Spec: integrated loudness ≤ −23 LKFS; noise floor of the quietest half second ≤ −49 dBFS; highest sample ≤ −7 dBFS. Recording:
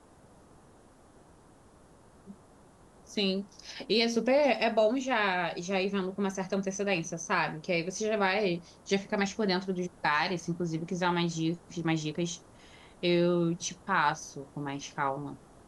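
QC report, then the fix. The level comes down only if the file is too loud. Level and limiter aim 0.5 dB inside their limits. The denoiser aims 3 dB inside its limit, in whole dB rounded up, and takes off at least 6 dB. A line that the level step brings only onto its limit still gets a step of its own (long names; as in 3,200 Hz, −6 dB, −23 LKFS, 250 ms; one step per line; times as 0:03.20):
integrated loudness −30.0 LKFS: in spec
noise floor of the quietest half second −58 dBFS: in spec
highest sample −13.5 dBFS: in spec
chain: no processing needed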